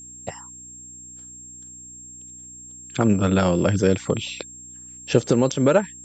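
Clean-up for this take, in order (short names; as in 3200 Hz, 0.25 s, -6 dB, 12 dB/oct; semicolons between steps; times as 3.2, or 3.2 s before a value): de-hum 61.6 Hz, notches 5; notch 7500 Hz, Q 30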